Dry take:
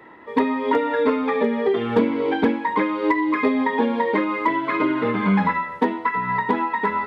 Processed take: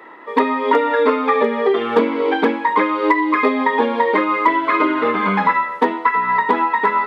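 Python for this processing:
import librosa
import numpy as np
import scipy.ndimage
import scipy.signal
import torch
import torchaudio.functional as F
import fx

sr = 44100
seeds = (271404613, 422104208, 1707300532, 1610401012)

y = scipy.signal.sosfilt(scipy.signal.butter(2, 330.0, 'highpass', fs=sr, output='sos'), x)
y = fx.peak_eq(y, sr, hz=1200.0, db=6.5, octaves=0.21)
y = F.gain(torch.from_numpy(y), 5.5).numpy()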